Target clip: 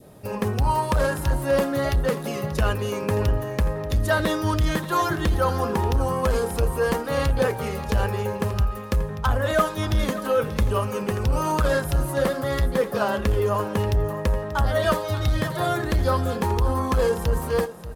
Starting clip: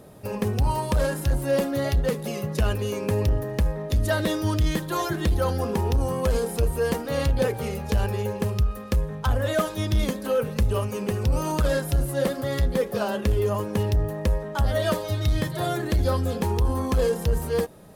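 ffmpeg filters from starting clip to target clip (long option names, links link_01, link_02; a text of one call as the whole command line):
ffmpeg -i in.wav -filter_complex "[0:a]adynamicequalizer=threshold=0.00891:dfrequency=1200:dqfactor=1:tfrequency=1200:tqfactor=1:attack=5:release=100:ratio=0.375:range=3.5:mode=boostabove:tftype=bell,asplit=2[link_01][link_02];[link_02]aecho=0:1:584:0.2[link_03];[link_01][link_03]amix=inputs=2:normalize=0" out.wav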